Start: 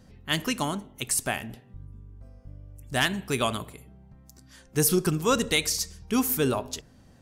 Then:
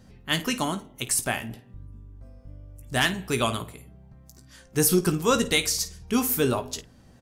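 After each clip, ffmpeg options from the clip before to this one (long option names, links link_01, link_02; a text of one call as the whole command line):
ffmpeg -i in.wav -af "aecho=1:1:17|53:0.335|0.178,volume=1dB" out.wav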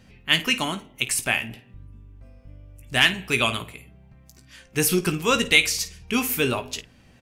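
ffmpeg -i in.wav -af "equalizer=frequency=2500:width=1.6:gain=12.5,volume=-1dB" out.wav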